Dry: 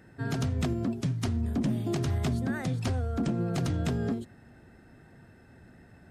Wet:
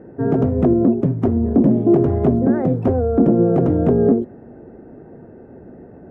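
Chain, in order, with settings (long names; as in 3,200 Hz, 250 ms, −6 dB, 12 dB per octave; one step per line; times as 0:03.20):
drawn EQ curve 110 Hz 0 dB, 450 Hz +15 dB, 2,900 Hz −17 dB, 4,300 Hz −28 dB
level +7 dB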